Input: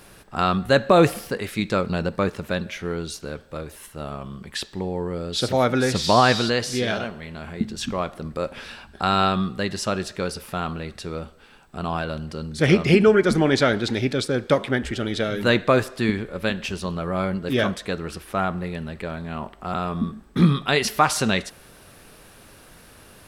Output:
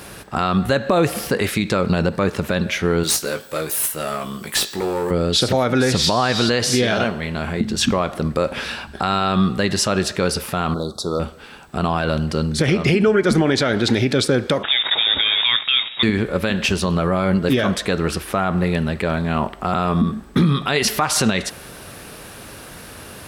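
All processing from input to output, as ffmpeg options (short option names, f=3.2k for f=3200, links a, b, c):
-filter_complex "[0:a]asettb=1/sr,asplit=3[a][b][c];[a]atrim=end=3.034[d];[b]atrim=start=3.03:end=5.11,asetpts=PTS-STARTPTS,afade=t=in:d=0.004:c=qsin,afade=t=out:st=2.076:d=0.004:c=qsin,aemphasis=mode=production:type=bsi,aeval=exprs='clip(val(0),-1,0.0316)':c=same,asplit=2[e][f];[f]adelay=19,volume=-7.5dB[g];[e][g]amix=inputs=2:normalize=0,atrim=end_sample=91728[h];[c]atrim=start=5.106[i];[d][h]acrossfade=d=0.004:c1=hsin:c2=qsin[j];[j][i]acrossfade=d=0.004:c1=qsin:c2=hsin,asettb=1/sr,asplit=3[k][l][m];[k]atrim=end=10.744[n];[l]atrim=start=10.74:end=11.2,asetpts=PTS-STARTPTS,afade=t=in:d=0.004:c=qsin,afade=t=out:st=0.456:d=0.004:c=qsin,lowshelf=f=150:g=-11.5,asoftclip=type=hard:threshold=-22dB,asuperstop=centerf=2200:order=12:qfactor=0.99[o];[m]atrim=start=11.196[p];[n][o]acrossfade=d=0.004:c1=hsin:c2=qsin[q];[q][p]acrossfade=d=0.004:c1=qsin:c2=hsin,asettb=1/sr,asplit=3[r][s][t];[r]atrim=end=14.634[u];[s]atrim=start=14.63:end=16.03,asetpts=PTS-STARTPTS,afade=t=in:d=0.004:c=qsin,afade=t=out:st=1.396:d=0.004:c=qsin,bandreject=f=67.66:t=h:w=4,bandreject=f=135.32:t=h:w=4,bandreject=f=202.98:t=h:w=4,acrusher=bits=6:dc=4:mix=0:aa=0.000001,lowpass=f=3.2k:t=q:w=0.5098,lowpass=f=3.2k:t=q:w=0.6013,lowpass=f=3.2k:t=q:w=0.9,lowpass=f=3.2k:t=q:w=2.563,afreqshift=-3800[v];[t]atrim=start=16.026[w];[u][v]acrossfade=d=0.004:c1=hsin:c2=qsin[x];[x][w]acrossfade=d=0.004:c1=qsin:c2=hsin,highpass=47,acompressor=threshold=-21dB:ratio=10,alimiter=level_in=17dB:limit=-1dB:release=50:level=0:latency=1,volume=-6dB"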